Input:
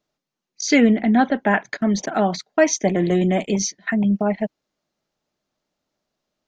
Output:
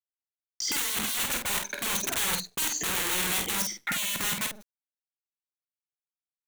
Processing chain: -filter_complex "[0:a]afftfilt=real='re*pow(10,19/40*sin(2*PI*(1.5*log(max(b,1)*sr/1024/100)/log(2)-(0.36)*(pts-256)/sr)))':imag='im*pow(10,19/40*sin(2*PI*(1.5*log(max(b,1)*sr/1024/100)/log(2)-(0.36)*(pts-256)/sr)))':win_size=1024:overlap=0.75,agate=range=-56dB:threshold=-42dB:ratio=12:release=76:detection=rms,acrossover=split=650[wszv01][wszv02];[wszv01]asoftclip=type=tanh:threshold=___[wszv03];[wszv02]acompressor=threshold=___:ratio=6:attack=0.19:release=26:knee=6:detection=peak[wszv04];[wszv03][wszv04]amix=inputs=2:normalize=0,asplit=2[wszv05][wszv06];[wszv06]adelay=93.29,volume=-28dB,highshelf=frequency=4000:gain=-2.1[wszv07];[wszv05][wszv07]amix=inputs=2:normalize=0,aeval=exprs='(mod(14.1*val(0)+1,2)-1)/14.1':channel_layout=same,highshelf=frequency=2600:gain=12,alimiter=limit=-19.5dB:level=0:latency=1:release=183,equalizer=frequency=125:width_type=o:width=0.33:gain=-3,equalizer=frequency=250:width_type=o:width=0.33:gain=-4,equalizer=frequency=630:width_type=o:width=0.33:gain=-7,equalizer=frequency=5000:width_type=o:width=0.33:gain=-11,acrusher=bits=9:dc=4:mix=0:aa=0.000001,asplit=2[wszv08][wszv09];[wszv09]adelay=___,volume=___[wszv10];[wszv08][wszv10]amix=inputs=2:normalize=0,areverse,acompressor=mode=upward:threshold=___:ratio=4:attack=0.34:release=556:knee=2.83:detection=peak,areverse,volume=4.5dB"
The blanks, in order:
-17dB, -34dB, 49, -5.5dB, -41dB